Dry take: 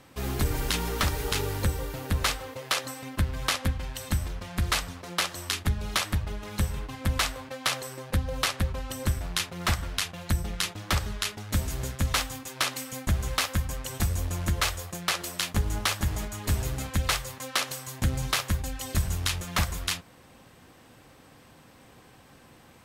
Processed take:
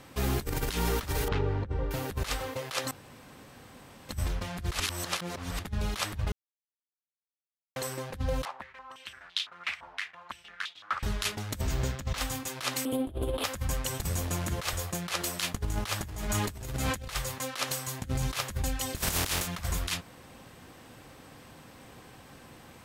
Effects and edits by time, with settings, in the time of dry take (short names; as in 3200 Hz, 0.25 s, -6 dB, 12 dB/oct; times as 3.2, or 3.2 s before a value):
1.28–1.91 tape spacing loss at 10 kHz 41 dB
2.91–4.09 room tone
4.8–5.59 reverse
6.32–7.76 mute
8.45–11.03 stepped band-pass 5.9 Hz 890–3500 Hz
11.61–12.18 bell 11000 Hz -14.5 dB
12.85–13.44 EQ curve 110 Hz 0 dB, 180 Hz -8 dB, 270 Hz +13 dB, 440 Hz +12 dB, 1100 Hz -2 dB, 2000 Hz -13 dB, 3300 Hz +3 dB, 6100 Hz -27 dB, 10000 Hz +1 dB, 14000 Hz -9 dB
14.04–14.73 HPF 110 Hz
15.94–17.14 sustainer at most 26 dB/s
18.96–19.46 spectral contrast lowered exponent 0.46
whole clip: negative-ratio compressor -30 dBFS, ratio -0.5